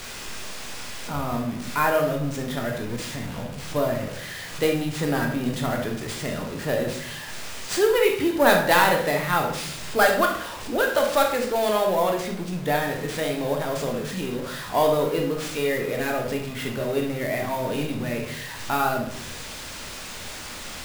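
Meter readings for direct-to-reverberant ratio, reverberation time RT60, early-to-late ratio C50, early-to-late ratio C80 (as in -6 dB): 1.5 dB, 0.60 s, 5.5 dB, 10.0 dB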